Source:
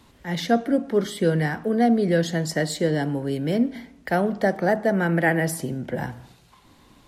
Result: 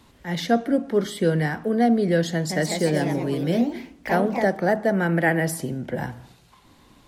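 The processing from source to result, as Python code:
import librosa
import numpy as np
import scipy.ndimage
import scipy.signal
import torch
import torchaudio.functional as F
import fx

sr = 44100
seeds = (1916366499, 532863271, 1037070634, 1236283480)

y = fx.echo_pitch(x, sr, ms=174, semitones=2, count=3, db_per_echo=-6.0, at=(2.32, 4.59))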